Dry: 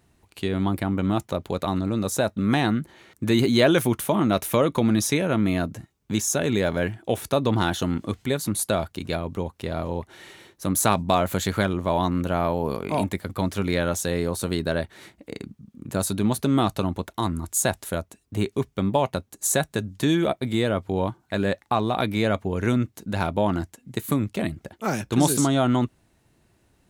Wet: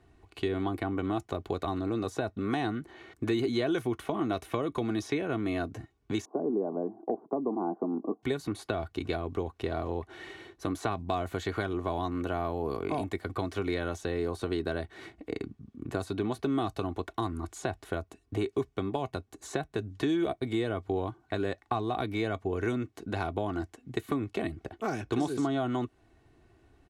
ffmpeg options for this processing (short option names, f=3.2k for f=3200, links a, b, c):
-filter_complex "[0:a]asettb=1/sr,asplit=3[a][b][c];[a]atrim=end=6.254[d];[b]atrim=start=6.25:end=8.23,asetpts=PTS-STARTPTS,afade=t=in:d=0.004:c=qsin,afade=t=out:st=1.976:d=0.004:c=qsin,asuperpass=centerf=430:order=12:qfactor=0.51[e];[c]atrim=start=8.226[f];[d][e]acrossfade=d=0.004:c1=hsin:c2=qsin[g];[g][f]acrossfade=d=0.004:c1=qsin:c2=hsin,acrossover=split=260|4800[h][i][j];[h]acompressor=threshold=-37dB:ratio=4[k];[i]acompressor=threshold=-32dB:ratio=4[l];[j]acompressor=threshold=-43dB:ratio=4[m];[k][l][m]amix=inputs=3:normalize=0,aemphasis=mode=reproduction:type=75fm,aecho=1:1:2.7:0.55"